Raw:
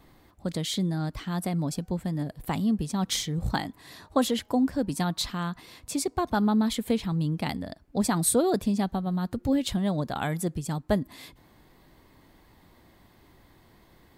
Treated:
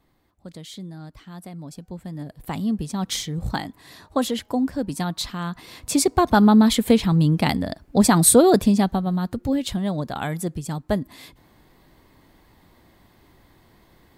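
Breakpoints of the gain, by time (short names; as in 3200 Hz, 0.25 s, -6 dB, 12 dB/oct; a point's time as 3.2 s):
1.58 s -9 dB
2.68 s +1.5 dB
5.39 s +1.5 dB
5.95 s +9.5 dB
8.58 s +9.5 dB
9.52 s +2 dB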